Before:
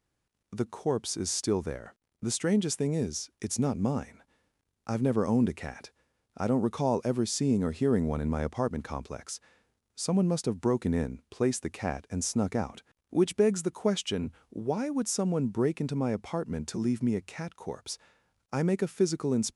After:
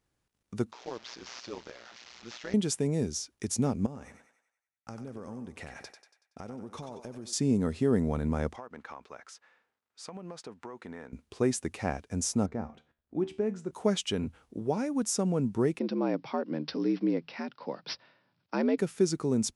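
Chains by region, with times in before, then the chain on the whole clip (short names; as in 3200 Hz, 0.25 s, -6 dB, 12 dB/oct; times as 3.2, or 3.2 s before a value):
0.72–2.54 delta modulation 32 kbps, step -38 dBFS + HPF 1100 Hz 6 dB/oct + AM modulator 120 Hz, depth 70%
3.86–7.33 expander -54 dBFS + compressor 10:1, threshold -38 dBFS + thinning echo 94 ms, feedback 50%, high-pass 480 Hz, level -7.5 dB
8.56–11.13 band-pass 1400 Hz, Q 0.83 + compressor 12:1, threshold -37 dBFS
12.46–13.71 LPF 6000 Hz + high shelf 2300 Hz -12 dB + resonator 76 Hz, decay 0.37 s
15.79–18.78 careless resampling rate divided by 4×, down none, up filtered + frequency shift +72 Hz
whole clip: dry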